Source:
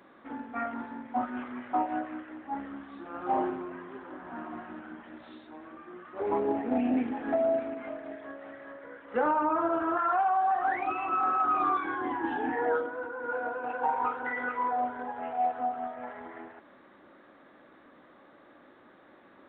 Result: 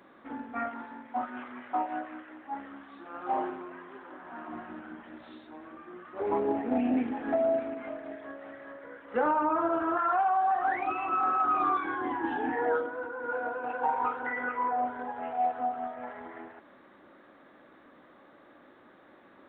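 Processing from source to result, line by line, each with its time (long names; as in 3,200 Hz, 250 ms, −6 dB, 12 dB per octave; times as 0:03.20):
0:00.69–0:04.48: low-shelf EQ 330 Hz −9.5 dB
0:14.26–0:14.87: low-pass filter 3,100 Hz 24 dB per octave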